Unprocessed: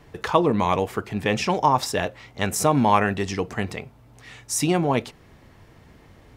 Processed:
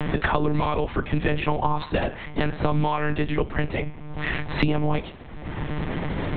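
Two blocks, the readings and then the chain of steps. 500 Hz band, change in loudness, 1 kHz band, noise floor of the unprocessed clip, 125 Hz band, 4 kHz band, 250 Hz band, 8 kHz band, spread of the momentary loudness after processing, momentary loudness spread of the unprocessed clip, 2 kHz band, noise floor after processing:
-3.0 dB, -3.5 dB, -5.0 dB, -52 dBFS, +2.5 dB, -3.5 dB, -1.5 dB, under -40 dB, 8 LU, 9 LU, +1.0 dB, -38 dBFS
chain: peaking EQ 140 Hz +11 dB 0.39 oct; de-hum 167.6 Hz, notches 31; peak limiter -12 dBFS, peak gain reduction 8 dB; monotone LPC vocoder at 8 kHz 150 Hz; three bands compressed up and down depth 100%

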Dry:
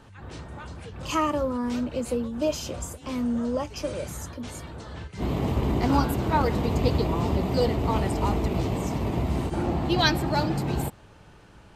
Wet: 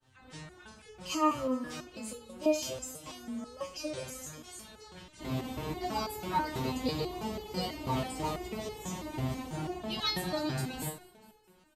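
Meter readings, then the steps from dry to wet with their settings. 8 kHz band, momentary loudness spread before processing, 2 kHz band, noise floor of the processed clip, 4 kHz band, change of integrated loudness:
-2.5 dB, 15 LU, -9.0 dB, -61 dBFS, -4.5 dB, -8.5 dB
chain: expander -44 dBFS; treble shelf 2.4 kHz +9.5 dB; frequency-shifting echo 214 ms, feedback 57%, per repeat +31 Hz, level -20.5 dB; spring tank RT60 2.1 s, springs 35 ms, chirp 50 ms, DRR 12.5 dB; resonator arpeggio 6.1 Hz 130–430 Hz; trim +2.5 dB

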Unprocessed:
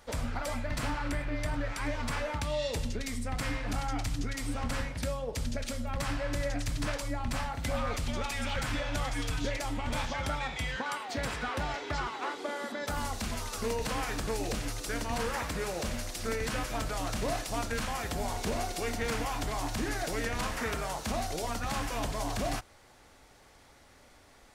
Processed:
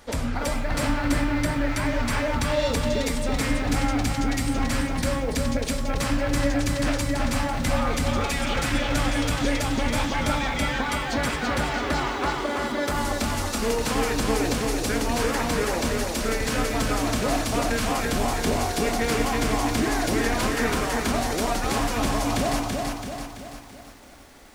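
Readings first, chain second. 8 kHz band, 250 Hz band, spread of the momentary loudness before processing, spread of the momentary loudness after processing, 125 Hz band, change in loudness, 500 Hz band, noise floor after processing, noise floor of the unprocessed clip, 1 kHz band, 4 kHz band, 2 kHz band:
+9.0 dB, +12.5 dB, 3 LU, 3 LU, +8.0 dB, +9.0 dB, +9.5 dB, -38 dBFS, -58 dBFS, +8.5 dB, +8.5 dB, +8.5 dB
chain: peaking EQ 280 Hz +6 dB 0.79 oct; de-hum 49.31 Hz, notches 31; bit-crushed delay 333 ms, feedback 55%, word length 10-bit, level -3 dB; trim +6.5 dB

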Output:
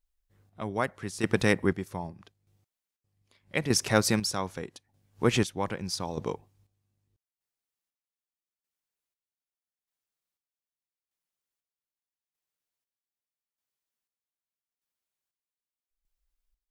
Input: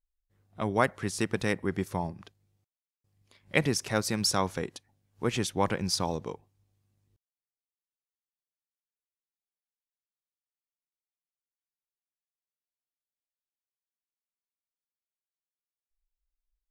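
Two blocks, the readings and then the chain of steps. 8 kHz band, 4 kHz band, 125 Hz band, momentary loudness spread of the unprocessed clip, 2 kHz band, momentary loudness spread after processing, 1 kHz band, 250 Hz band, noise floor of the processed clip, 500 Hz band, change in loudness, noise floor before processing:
+1.0 dB, 0.0 dB, +1.0 dB, 10 LU, +1.0 dB, 15 LU, -2.0 dB, +1.5 dB, under -85 dBFS, +1.0 dB, +1.0 dB, under -85 dBFS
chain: square tremolo 0.81 Hz, depth 65%, duty 40%; trim +5 dB

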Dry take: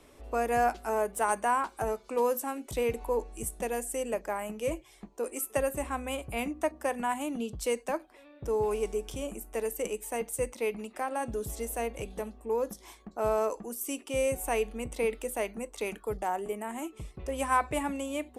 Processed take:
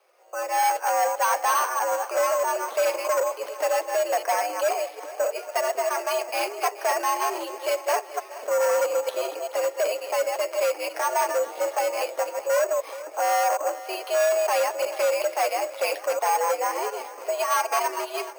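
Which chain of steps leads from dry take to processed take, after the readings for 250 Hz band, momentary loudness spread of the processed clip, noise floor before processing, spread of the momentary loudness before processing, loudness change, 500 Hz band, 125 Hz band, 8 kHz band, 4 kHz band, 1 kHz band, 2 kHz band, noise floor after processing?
-8.0 dB, 6 LU, -57 dBFS, 8 LU, +7.5 dB, +7.0 dB, under -40 dB, +7.5 dB, +11.0 dB, +8.5 dB, +8.0 dB, -41 dBFS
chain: chunks repeated in reverse 128 ms, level -6 dB; level rider gain up to 16 dB; flange 0.22 Hz, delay 4.1 ms, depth 5 ms, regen -31%; hard clipper -18.5 dBFS, distortion -9 dB; shuffle delay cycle 713 ms, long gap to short 1.5:1, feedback 41%, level -16.5 dB; mistuned SSB +100 Hz 370–3100 Hz; careless resampling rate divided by 6×, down none, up hold

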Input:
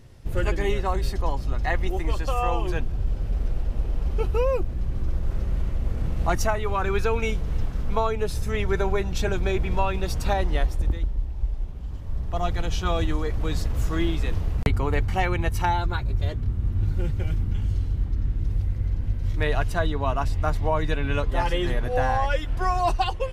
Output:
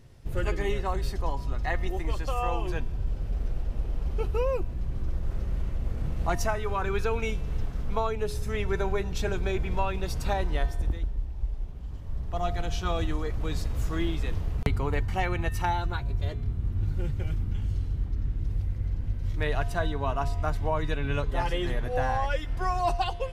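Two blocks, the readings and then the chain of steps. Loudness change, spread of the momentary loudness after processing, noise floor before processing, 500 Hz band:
-4.0 dB, 5 LU, -31 dBFS, -4.0 dB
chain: feedback comb 140 Hz, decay 1 s, harmonics odd, mix 60%; trim +3.5 dB

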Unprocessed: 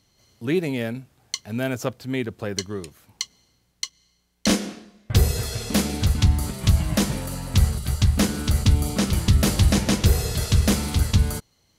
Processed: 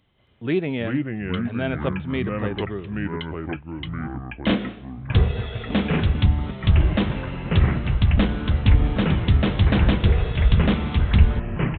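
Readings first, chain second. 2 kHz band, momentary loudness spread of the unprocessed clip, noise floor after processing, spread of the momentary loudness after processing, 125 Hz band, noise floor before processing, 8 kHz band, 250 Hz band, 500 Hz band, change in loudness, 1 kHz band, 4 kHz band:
+2.5 dB, 13 LU, -40 dBFS, 11 LU, +1.5 dB, -66 dBFS, under -40 dB, +1.5 dB, +1.5 dB, +0.5 dB, +2.5 dB, -4.0 dB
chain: resampled via 8 kHz; ever faster or slower copies 272 ms, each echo -4 st, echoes 3

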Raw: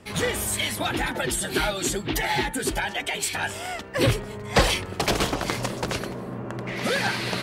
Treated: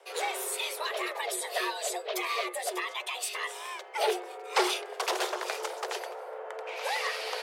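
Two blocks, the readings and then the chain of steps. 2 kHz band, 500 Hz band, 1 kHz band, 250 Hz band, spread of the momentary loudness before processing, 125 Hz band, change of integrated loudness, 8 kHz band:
-7.0 dB, -5.5 dB, -3.5 dB, -15.0 dB, 7 LU, under -40 dB, -6.5 dB, -7.0 dB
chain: frequency shift +320 Hz; trim -7 dB

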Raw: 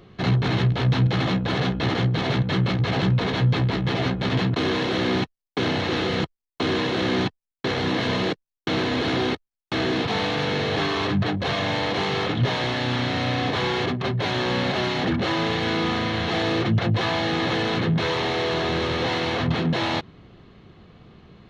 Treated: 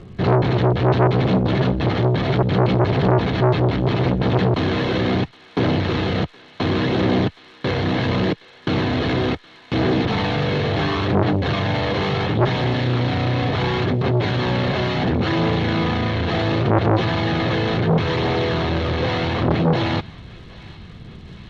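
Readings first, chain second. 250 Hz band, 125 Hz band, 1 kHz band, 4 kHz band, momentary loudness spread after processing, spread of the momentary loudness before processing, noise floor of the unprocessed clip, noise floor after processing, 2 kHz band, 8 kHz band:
+4.0 dB, +5.0 dB, +3.0 dB, -1.5 dB, 7 LU, 4 LU, -85 dBFS, -46 dBFS, +0.5 dB, no reading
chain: bass shelf 190 Hz +9.5 dB; crackle 260 per s -42 dBFS; phaser 0.71 Hz, delay 2 ms, feedback 23%; distance through air 98 m; thinning echo 768 ms, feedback 76%, high-pass 1.2 kHz, level -21 dB; transformer saturation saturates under 740 Hz; trim +3 dB

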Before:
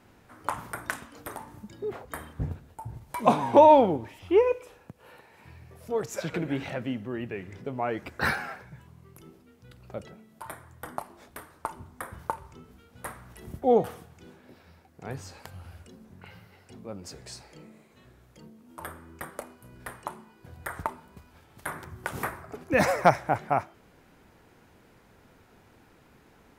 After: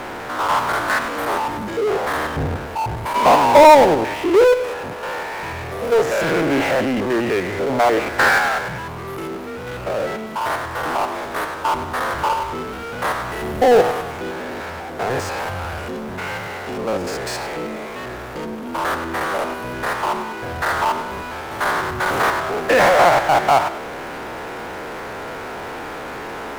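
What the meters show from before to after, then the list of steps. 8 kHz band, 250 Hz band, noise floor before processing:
+12.5 dB, +8.5 dB, -59 dBFS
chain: spectrogram pixelated in time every 100 ms; three-band isolator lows -15 dB, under 360 Hz, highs -15 dB, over 2.4 kHz; power-law waveshaper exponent 0.5; trim +6.5 dB

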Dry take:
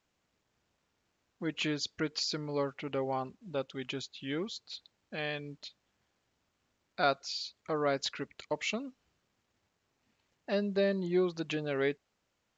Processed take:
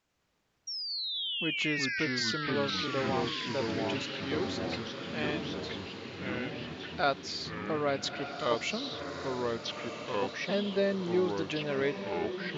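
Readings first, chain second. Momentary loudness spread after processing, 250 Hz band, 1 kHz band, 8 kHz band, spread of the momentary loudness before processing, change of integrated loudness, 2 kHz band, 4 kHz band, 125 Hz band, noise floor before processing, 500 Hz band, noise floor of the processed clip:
8 LU, +3.0 dB, +3.5 dB, no reading, 14 LU, +2.0 dB, +6.0 dB, +5.5 dB, +3.5 dB, -80 dBFS, +2.0 dB, -75 dBFS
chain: painted sound fall, 0.67–2.00 s, 1.5–5.7 kHz -37 dBFS; echo that smears into a reverb 1292 ms, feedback 44%, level -8.5 dB; ever faster or slower copies 98 ms, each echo -3 st, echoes 3

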